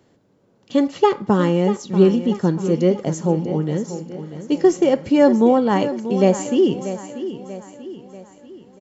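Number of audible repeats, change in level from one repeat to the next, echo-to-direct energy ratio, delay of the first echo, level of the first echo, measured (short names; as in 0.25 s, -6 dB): 4, -6.5 dB, -11.0 dB, 0.638 s, -12.0 dB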